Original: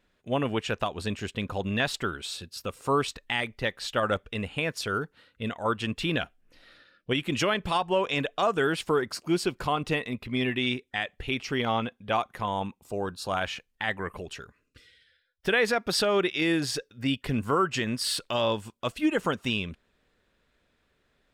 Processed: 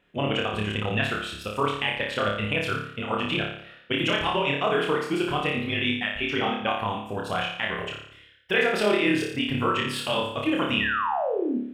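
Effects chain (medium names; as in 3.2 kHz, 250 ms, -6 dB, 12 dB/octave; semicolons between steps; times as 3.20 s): high-pass 52 Hz; resonant high shelf 3.7 kHz -6.5 dB, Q 3; in parallel at +0.5 dB: compression, threshold -33 dBFS, peak gain reduction 14.5 dB; on the sum: granular stretch 0.55×, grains 49 ms; painted sound fall, 10.80–11.58 s, 220–2000 Hz -26 dBFS; flutter echo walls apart 4.9 m, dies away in 0.65 s; trim -3 dB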